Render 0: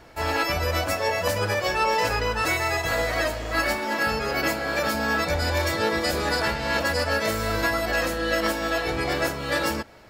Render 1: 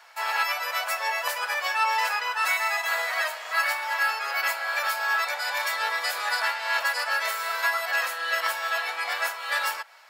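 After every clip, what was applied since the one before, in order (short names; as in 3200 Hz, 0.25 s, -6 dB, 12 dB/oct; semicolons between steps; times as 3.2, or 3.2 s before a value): HPF 850 Hz 24 dB/oct; dynamic EQ 5900 Hz, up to -5 dB, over -45 dBFS, Q 1.1; gain +1.5 dB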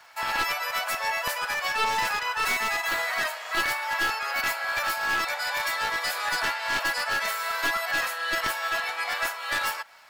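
one-sided fold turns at -22 dBFS; crackle 310/s -50 dBFS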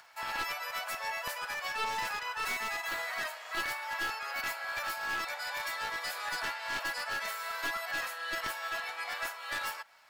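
upward compressor, threshold -45 dBFS; gain -8.5 dB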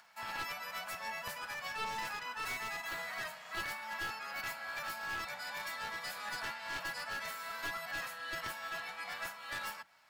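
octaver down 2 oct, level 0 dB; gain -5 dB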